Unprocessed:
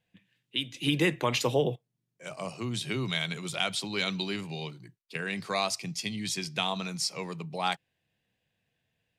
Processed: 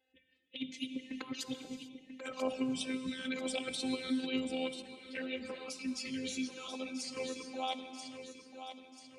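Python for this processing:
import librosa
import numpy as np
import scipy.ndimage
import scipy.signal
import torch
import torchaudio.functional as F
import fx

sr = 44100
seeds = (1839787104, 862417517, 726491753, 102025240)

y = fx.fade_out_tail(x, sr, length_s=2.97)
y = scipy.signal.sosfilt(scipy.signal.butter(4, 12000.0, 'lowpass', fs=sr, output='sos'), y)
y = fx.hum_notches(y, sr, base_hz=50, count=5)
y = fx.spec_gate(y, sr, threshold_db=-25, keep='strong')
y = fx.over_compress(y, sr, threshold_db=-34.0, ratio=-0.5)
y = fx.robotise(y, sr, hz=260.0)
y = scipy.signal.sosfilt(scipy.signal.butter(2, 60.0, 'highpass', fs=sr, output='sos'), y)
y = fx.peak_eq(y, sr, hz=430.0, db=4.5, octaves=2.2)
y = fx.env_flanger(y, sr, rest_ms=2.4, full_db=-30.0)
y = fx.echo_feedback(y, sr, ms=989, feedback_pct=42, wet_db=-10)
y = fx.rev_gated(y, sr, seeds[0], gate_ms=470, shape='flat', drr_db=9.0)
y = fx.ensemble(y, sr, at=(4.82, 7.17))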